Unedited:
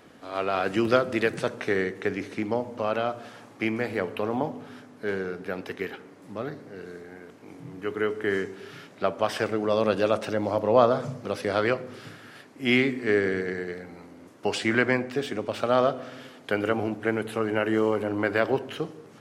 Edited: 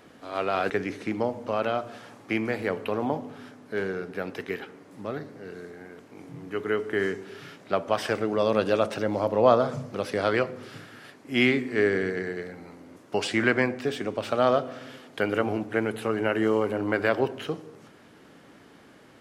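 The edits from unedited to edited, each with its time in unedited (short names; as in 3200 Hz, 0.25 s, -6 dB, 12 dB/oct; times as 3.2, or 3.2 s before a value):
0.7–2.01 cut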